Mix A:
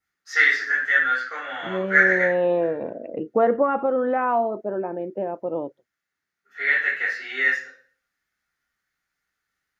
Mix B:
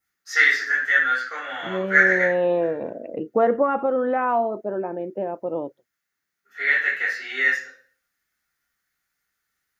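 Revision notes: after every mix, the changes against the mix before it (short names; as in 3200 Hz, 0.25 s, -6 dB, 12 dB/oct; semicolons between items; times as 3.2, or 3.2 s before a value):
master: add high shelf 7800 Hz +12 dB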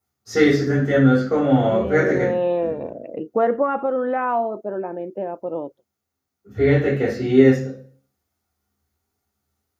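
first voice: remove resonant high-pass 1700 Hz, resonance Q 4.2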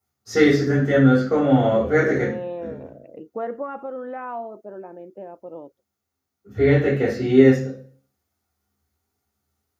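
second voice -10.0 dB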